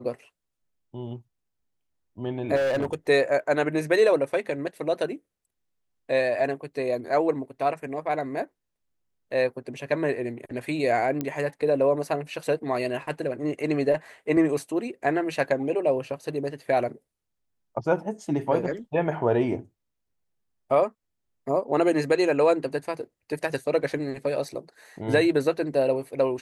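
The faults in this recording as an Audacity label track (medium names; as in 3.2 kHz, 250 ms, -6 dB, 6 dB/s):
2.550000	2.950000	clipped -21.5 dBFS
11.210000	11.210000	pop -15 dBFS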